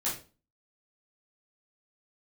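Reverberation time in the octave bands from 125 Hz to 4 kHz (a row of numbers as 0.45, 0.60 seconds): 0.45, 0.45, 0.40, 0.30, 0.30, 0.30 seconds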